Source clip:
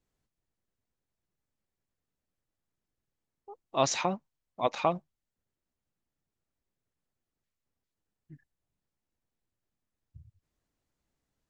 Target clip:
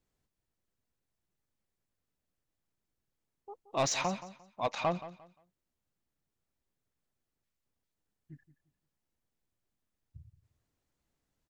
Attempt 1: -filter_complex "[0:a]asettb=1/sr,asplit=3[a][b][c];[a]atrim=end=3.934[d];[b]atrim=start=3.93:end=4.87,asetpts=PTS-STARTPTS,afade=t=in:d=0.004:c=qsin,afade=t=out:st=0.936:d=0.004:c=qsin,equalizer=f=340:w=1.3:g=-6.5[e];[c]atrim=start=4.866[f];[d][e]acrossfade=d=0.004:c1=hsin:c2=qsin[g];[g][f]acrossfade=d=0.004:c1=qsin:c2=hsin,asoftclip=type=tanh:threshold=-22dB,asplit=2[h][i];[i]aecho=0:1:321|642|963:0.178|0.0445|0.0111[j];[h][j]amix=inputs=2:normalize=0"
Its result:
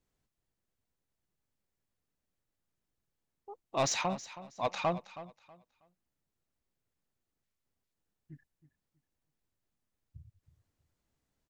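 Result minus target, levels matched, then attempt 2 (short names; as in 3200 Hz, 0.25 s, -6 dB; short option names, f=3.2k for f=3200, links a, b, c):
echo 0.146 s late
-filter_complex "[0:a]asettb=1/sr,asplit=3[a][b][c];[a]atrim=end=3.934[d];[b]atrim=start=3.93:end=4.87,asetpts=PTS-STARTPTS,afade=t=in:d=0.004:c=qsin,afade=t=out:st=0.936:d=0.004:c=qsin,equalizer=f=340:w=1.3:g=-6.5[e];[c]atrim=start=4.866[f];[d][e]acrossfade=d=0.004:c1=hsin:c2=qsin[g];[g][f]acrossfade=d=0.004:c1=qsin:c2=hsin,asoftclip=type=tanh:threshold=-22dB,asplit=2[h][i];[i]aecho=0:1:175|350|525:0.178|0.0445|0.0111[j];[h][j]amix=inputs=2:normalize=0"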